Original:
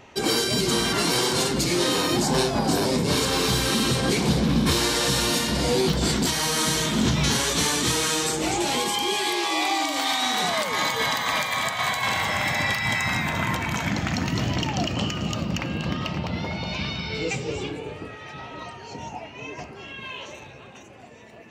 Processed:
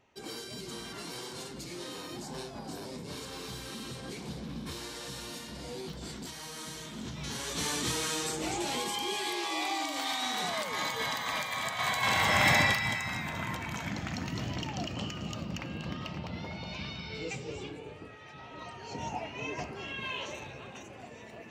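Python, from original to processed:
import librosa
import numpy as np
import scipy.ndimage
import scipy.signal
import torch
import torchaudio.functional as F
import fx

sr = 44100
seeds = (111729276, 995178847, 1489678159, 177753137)

y = fx.gain(x, sr, db=fx.line((7.13, -19.0), (7.71, -9.0), (11.6, -9.0), (12.53, 2.0), (13.03, -10.5), (18.39, -10.5), (19.09, -1.0)))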